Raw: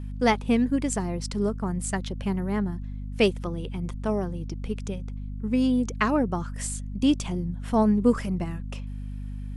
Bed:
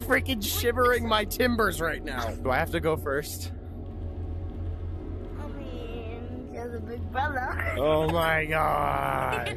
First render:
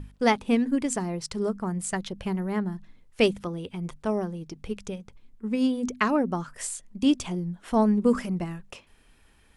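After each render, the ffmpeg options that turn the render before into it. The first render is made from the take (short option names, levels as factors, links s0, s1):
-af "bandreject=f=50:t=h:w=6,bandreject=f=100:t=h:w=6,bandreject=f=150:t=h:w=6,bandreject=f=200:t=h:w=6,bandreject=f=250:t=h:w=6"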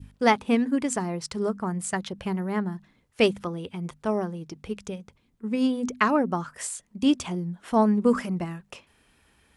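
-af "highpass=60,adynamicequalizer=threshold=0.0158:dfrequency=1200:dqfactor=0.77:tfrequency=1200:tqfactor=0.77:attack=5:release=100:ratio=0.375:range=2:mode=boostabove:tftype=bell"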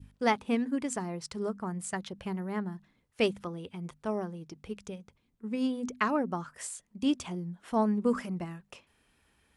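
-af "volume=0.473"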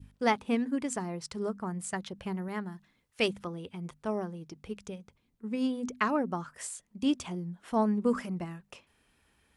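-filter_complex "[0:a]asettb=1/sr,asplit=3[s0][s1][s2];[s0]atrim=end=2.484[s3];[s1]atrim=start=2.48:end=3.28,asetpts=PTS-STARTPTS,afade=t=in:d=0.004:c=qsin,afade=t=out:st=0.796:d=0.004:c=qsin,tiltshelf=f=1100:g=-3.5[s4];[s2]atrim=start=3.276[s5];[s3][s4]acrossfade=d=0.004:c1=hsin:c2=qsin[s6];[s6][s5]acrossfade=d=0.004:c1=qsin:c2=hsin"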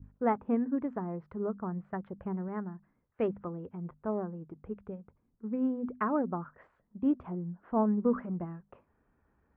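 -af "lowpass=f=1400:w=0.5412,lowpass=f=1400:w=1.3066,equalizer=f=890:w=1.5:g=-2"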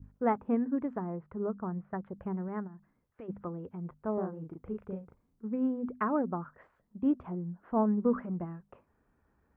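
-filter_complex "[0:a]asettb=1/sr,asplit=3[s0][s1][s2];[s0]atrim=end=1.104[s3];[s1]atrim=start=1.1:end=2.13,asetpts=PTS-STARTPTS,afade=t=in:d=0.004:c=qsin,afade=t=out:st=1.026:d=0.004:c=qsin,lowpass=2200[s4];[s2]atrim=start=2.126[s5];[s3][s4]acrossfade=d=0.004:c1=hsin:c2=qsin[s6];[s6][s5]acrossfade=d=0.004:c1=qsin:c2=hsin,asplit=3[s7][s8][s9];[s7]afade=t=out:st=2.66:d=0.02[s10];[s8]acompressor=threshold=0.00562:ratio=5:attack=3.2:release=140:knee=1:detection=peak,afade=t=in:st=2.66:d=0.02,afade=t=out:st=3.28:d=0.02[s11];[s9]afade=t=in:st=3.28:d=0.02[s12];[s10][s11][s12]amix=inputs=3:normalize=0,asettb=1/sr,asplit=3[s13][s14][s15];[s13]atrim=end=4.144[s16];[s14]atrim=start=4.14:end=5.47,asetpts=PTS-STARTPTS,afade=t=in:d=0.004:c=qsin,afade=t=out:st=1.326:d=0.004:c=qsin,asplit=2[s17][s18];[s18]adelay=37,volume=0.708[s19];[s17][s19]amix=inputs=2:normalize=0,atrim=end_sample=58653[s20];[s15]atrim=start=5.466[s21];[s16][s20]acrossfade=d=0.004:c1=hsin:c2=qsin[s22];[s22][s21]acrossfade=d=0.004:c1=qsin:c2=hsin"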